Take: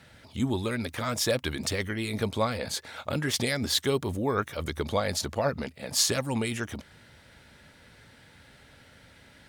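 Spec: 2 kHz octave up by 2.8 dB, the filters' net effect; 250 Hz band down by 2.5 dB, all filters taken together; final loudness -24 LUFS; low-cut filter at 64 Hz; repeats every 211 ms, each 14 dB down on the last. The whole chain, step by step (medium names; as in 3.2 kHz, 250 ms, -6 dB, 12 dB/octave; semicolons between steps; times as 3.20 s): high-pass 64 Hz; peaking EQ 250 Hz -3 dB; peaking EQ 2 kHz +3.5 dB; feedback delay 211 ms, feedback 20%, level -14 dB; trim +5 dB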